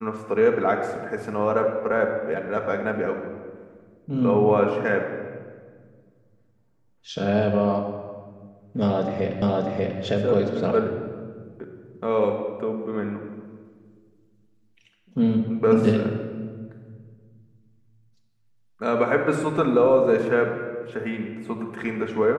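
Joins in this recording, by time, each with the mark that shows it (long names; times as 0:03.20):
0:09.42: the same again, the last 0.59 s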